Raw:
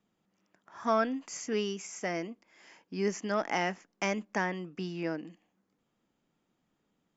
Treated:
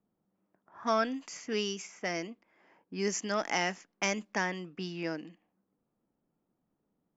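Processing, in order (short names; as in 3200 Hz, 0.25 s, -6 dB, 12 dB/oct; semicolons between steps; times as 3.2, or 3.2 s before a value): low-pass opened by the level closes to 860 Hz, open at -28.5 dBFS; high shelf 3200 Hz +12 dB; gain -2 dB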